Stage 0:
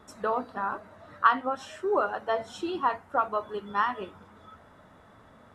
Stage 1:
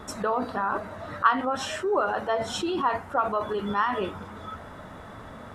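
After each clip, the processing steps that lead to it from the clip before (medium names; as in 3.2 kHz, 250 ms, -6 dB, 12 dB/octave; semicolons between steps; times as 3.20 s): bass shelf 63 Hz +5 dB; in parallel at +1.5 dB: compressor with a negative ratio -38 dBFS, ratio -1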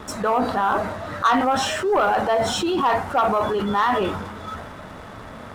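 dynamic bell 780 Hz, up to +6 dB, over -42 dBFS, Q 5.1; transient shaper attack -2 dB, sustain +5 dB; waveshaping leveller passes 2; trim -1.5 dB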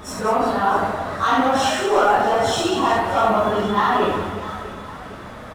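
phase randomisation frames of 100 ms; on a send: reverse bouncing-ball echo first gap 70 ms, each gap 1.6×, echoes 5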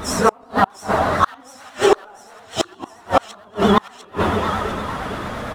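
inverted gate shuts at -10 dBFS, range -35 dB; feedback echo behind a high-pass 701 ms, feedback 62%, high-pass 1.9 kHz, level -15 dB; vibrato 8.8 Hz 77 cents; trim +8 dB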